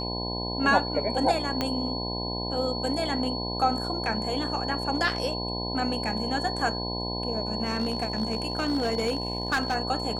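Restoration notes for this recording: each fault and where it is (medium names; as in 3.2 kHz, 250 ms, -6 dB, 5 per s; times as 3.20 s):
buzz 60 Hz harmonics 17 -33 dBFS
whine 4.4 kHz -33 dBFS
1.61 s: pop -12 dBFS
7.65–9.76 s: clipped -21 dBFS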